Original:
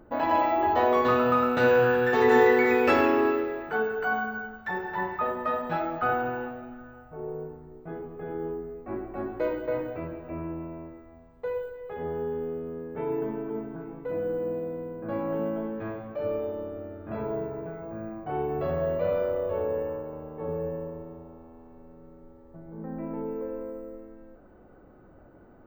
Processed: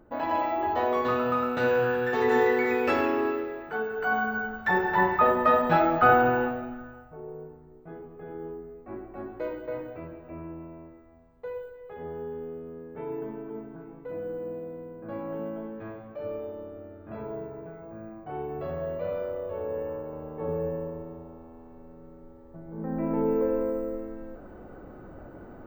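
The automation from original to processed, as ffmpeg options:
ffmpeg -i in.wav -af "volume=21dB,afade=type=in:start_time=3.88:duration=0.86:silence=0.281838,afade=type=out:start_time=6.44:duration=0.78:silence=0.237137,afade=type=in:start_time=19.58:duration=0.72:silence=0.473151,afade=type=in:start_time=22.68:duration=0.65:silence=0.446684" out.wav

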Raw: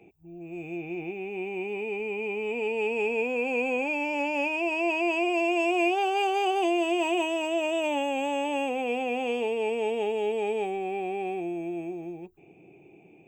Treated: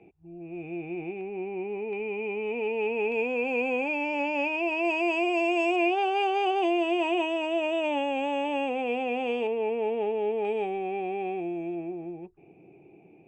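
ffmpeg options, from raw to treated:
ffmpeg -i in.wav -af "asetnsamples=nb_out_samples=441:pad=0,asendcmd='1.21 lowpass f 1600;1.93 lowpass f 2700;3.12 lowpass f 4400;4.85 lowpass f 6800;5.76 lowpass f 3900;9.47 lowpass f 1900;10.45 lowpass f 3300;11.75 lowpass f 2100',lowpass=2500" out.wav

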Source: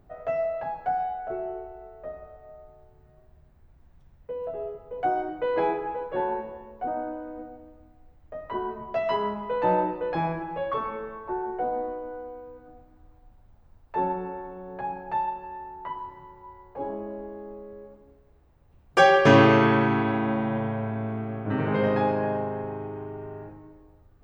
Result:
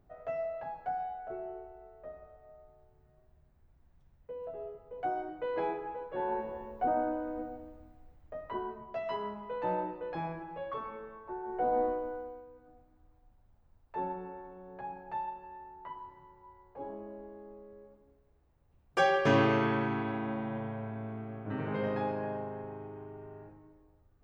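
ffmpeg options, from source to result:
ffmpeg -i in.wav -af "volume=12dB,afade=type=in:start_time=6.17:duration=0.47:silence=0.354813,afade=type=out:start_time=7.55:duration=1.31:silence=0.298538,afade=type=in:start_time=11.43:duration=0.4:silence=0.266073,afade=type=out:start_time=11.83:duration=0.64:silence=0.281838" out.wav

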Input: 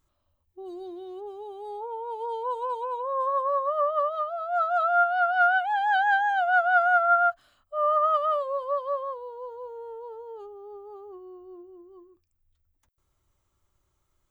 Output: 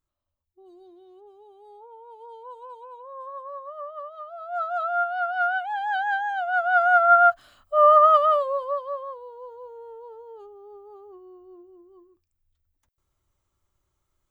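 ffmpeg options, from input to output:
ffmpeg -i in.wav -af "volume=9.5dB,afade=type=in:start_time=4.16:duration=0.43:silence=0.375837,afade=type=in:start_time=6.52:duration=1.25:silence=0.237137,afade=type=out:start_time=7.77:duration=1.1:silence=0.251189" out.wav

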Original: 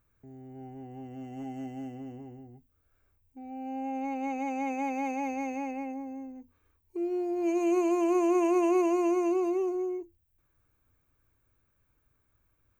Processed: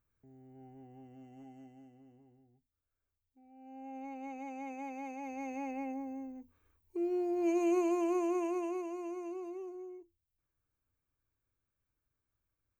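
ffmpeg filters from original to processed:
ffmpeg -i in.wav -af "volume=6dB,afade=type=out:start_time=0.81:duration=1.06:silence=0.375837,afade=type=in:start_time=3.53:duration=0.44:silence=0.421697,afade=type=in:start_time=5.21:duration=0.7:silence=0.375837,afade=type=out:start_time=7.5:duration=1.34:silence=0.251189" out.wav

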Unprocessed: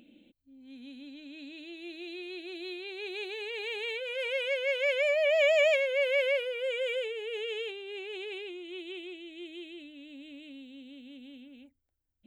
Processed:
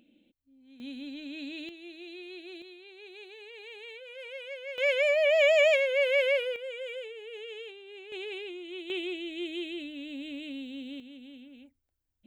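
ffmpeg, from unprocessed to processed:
ffmpeg -i in.wav -af "asetnsamples=nb_out_samples=441:pad=0,asendcmd='0.8 volume volume 6dB;1.69 volume volume -3dB;2.62 volume volume -10dB;4.78 volume volume 2dB;6.56 volume volume -6.5dB;8.12 volume volume 1dB;8.9 volume volume 8dB;11 volume volume 0.5dB',volume=-6dB" out.wav

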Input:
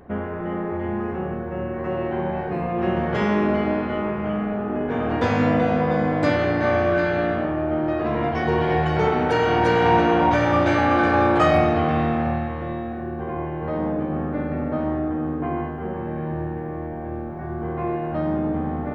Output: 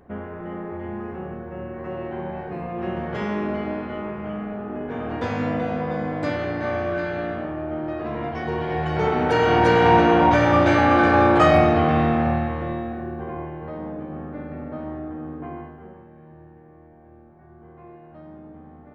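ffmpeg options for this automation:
ffmpeg -i in.wav -af "volume=2dB,afade=type=in:start_time=8.71:duration=0.83:silence=0.421697,afade=type=out:start_time=12.49:duration=1.27:silence=0.316228,afade=type=out:start_time=15.44:duration=0.65:silence=0.281838" out.wav

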